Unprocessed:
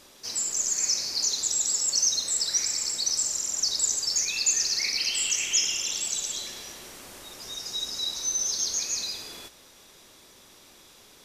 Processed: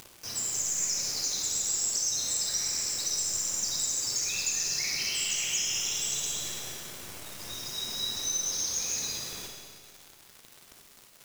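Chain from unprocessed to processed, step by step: bass shelf 200 Hz +5.5 dB; band-stop 4.4 kHz, Q 6.8; thinning echo 69 ms, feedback 40%, level -15 dB; flange 0.26 Hz, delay 7.6 ms, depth 10 ms, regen -29%; peaking EQ 120 Hz +6.5 dB 1.2 oct; hum notches 60/120/180/240/300/360 Hz; upward compressor, threshold -42 dBFS; bit crusher 7-bit; compression, threshold -28 dBFS, peak gain reduction 6 dB; on a send at -1 dB: reverberation RT60 1.9 s, pre-delay 45 ms

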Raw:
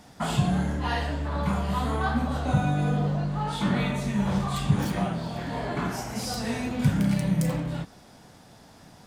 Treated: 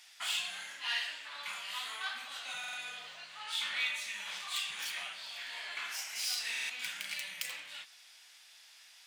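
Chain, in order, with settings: tracing distortion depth 0.098 ms; resonant high-pass 2.5 kHz, resonance Q 1.8; buffer glitch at 2.59/6.51 s, samples 2048, times 3; trim -1 dB

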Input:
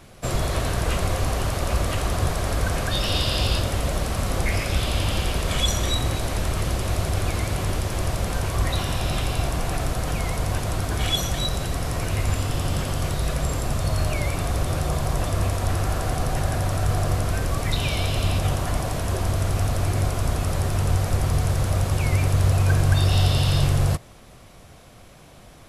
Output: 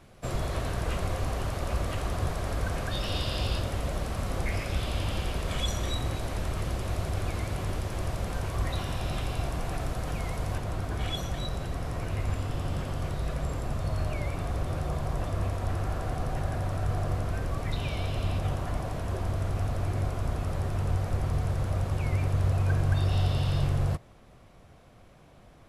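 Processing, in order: treble shelf 3.4 kHz -6 dB, from 10.58 s -11 dB; trim -6.5 dB

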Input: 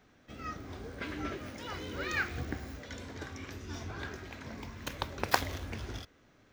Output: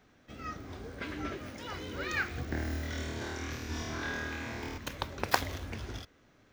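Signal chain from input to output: 2.49–4.78 s: flutter echo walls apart 4.4 m, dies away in 1.3 s

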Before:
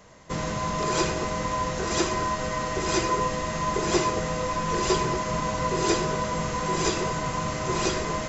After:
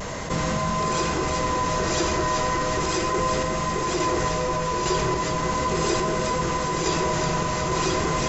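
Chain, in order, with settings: vibrato 0.38 Hz 16 cents; on a send: echo whose repeats swap between lows and highs 183 ms, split 1.6 kHz, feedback 76%, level -5 dB; on the sum: random-step tremolo; de-hum 104.9 Hz, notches 34; level flattener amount 70%; trim -2.5 dB

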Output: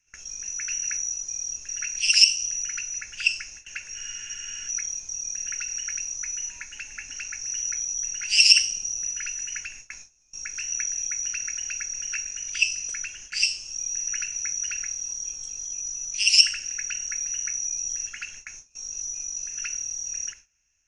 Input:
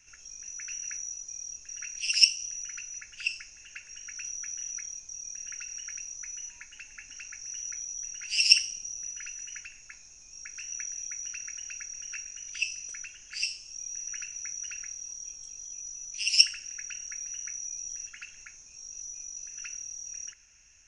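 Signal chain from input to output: gate with hold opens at -39 dBFS; spectral freeze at 3.97 s, 0.70 s; loudness maximiser +9.5 dB; trim -1 dB

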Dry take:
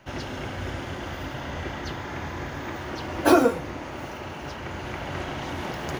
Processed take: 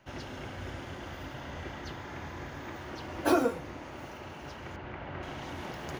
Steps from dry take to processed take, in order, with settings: 4.76–5.23 s: low-pass 2.6 kHz 12 dB/octave; trim -8 dB

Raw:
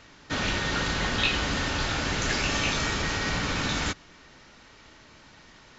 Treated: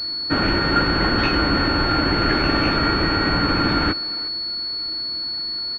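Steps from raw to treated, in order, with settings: small resonant body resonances 320/1400 Hz, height 10 dB; speakerphone echo 360 ms, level -17 dB; class-D stage that switches slowly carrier 4.4 kHz; trim +7.5 dB

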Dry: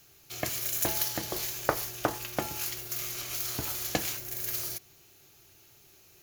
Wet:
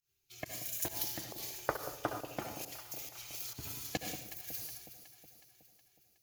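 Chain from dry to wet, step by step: expander on every frequency bin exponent 1.5; reverberation RT60 0.60 s, pre-delay 60 ms, DRR 4 dB; volume shaper 136 bpm, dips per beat 1, -19 dB, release 132 ms; echo whose repeats swap between lows and highs 184 ms, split 820 Hz, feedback 74%, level -10 dB; trim -6 dB

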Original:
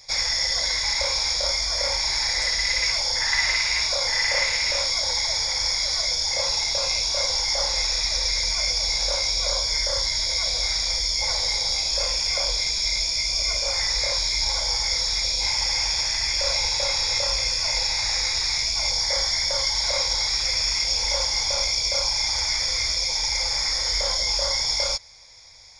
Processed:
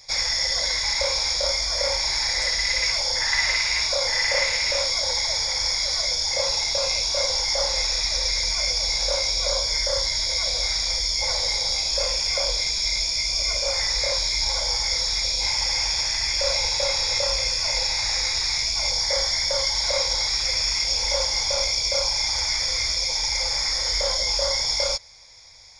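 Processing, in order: dynamic bell 540 Hz, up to +5 dB, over -44 dBFS, Q 4

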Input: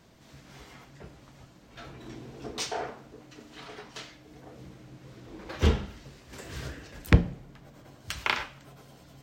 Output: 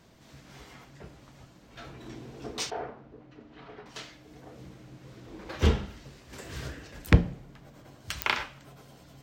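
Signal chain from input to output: 2.70–3.86 s: tape spacing loss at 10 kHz 31 dB; clicks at 8.22 s, -8 dBFS

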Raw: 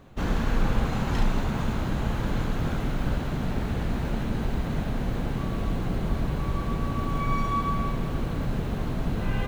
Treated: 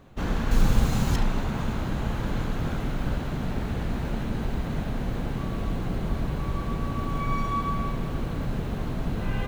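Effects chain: 0.51–1.16 s: tone controls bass +5 dB, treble +12 dB; trim -1 dB

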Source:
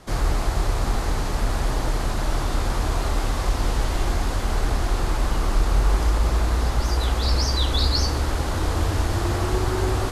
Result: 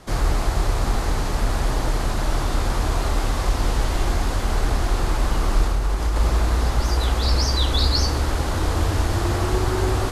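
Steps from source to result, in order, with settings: 5.64–6.16 s: compression, threshold -19 dBFS, peak gain reduction 5.5 dB; trim +1.5 dB

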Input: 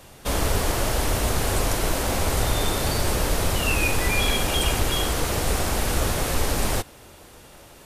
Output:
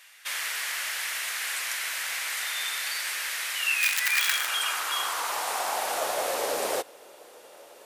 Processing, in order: 3.81–4.49 s: integer overflow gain 14 dB; high-pass sweep 1.9 kHz -> 500 Hz, 3.95–6.64 s; trim -4 dB

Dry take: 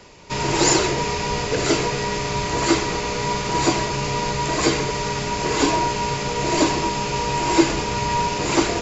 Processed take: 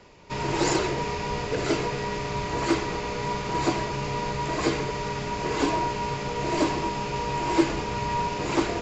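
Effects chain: treble shelf 5.2 kHz -11 dB; loudspeaker Doppler distortion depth 0.1 ms; trim -5 dB

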